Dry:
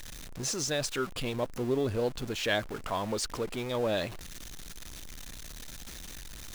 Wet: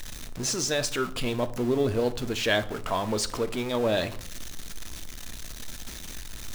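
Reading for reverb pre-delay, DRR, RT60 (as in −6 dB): 3 ms, 10.5 dB, 0.65 s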